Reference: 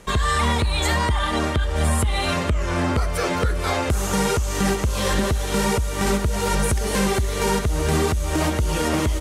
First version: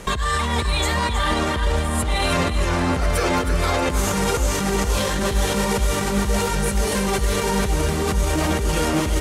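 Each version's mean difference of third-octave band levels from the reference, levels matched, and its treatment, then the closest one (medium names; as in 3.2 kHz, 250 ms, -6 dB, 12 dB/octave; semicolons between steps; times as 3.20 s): 3.0 dB: compressor with a negative ratio -23 dBFS, ratio -0.5; peak limiter -18 dBFS, peak gain reduction 8.5 dB; on a send: two-band feedback delay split 1.2 kHz, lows 576 ms, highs 316 ms, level -9 dB; on the sum: trim +6 dB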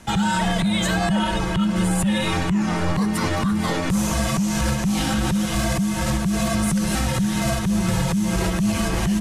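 5.0 dB: peak limiter -14 dBFS, peak gain reduction 4 dB; frequency shift -260 Hz; trim +1.5 dB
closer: first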